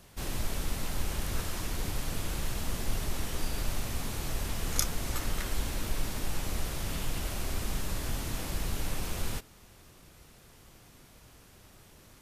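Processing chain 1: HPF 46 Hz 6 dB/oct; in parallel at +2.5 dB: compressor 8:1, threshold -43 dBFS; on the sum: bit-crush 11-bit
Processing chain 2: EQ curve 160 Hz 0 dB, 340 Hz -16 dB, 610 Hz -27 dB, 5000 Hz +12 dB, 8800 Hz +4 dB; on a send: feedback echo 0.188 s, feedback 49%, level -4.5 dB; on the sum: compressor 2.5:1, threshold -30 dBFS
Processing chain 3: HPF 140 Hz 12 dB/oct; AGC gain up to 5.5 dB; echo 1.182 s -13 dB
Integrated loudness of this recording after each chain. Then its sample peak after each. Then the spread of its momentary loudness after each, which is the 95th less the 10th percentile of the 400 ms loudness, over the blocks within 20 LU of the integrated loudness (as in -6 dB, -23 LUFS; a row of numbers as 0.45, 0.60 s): -33.5, -34.0, -32.0 LUFS; -5.5, -7.0, -3.0 dBFS; 16, 17, 19 LU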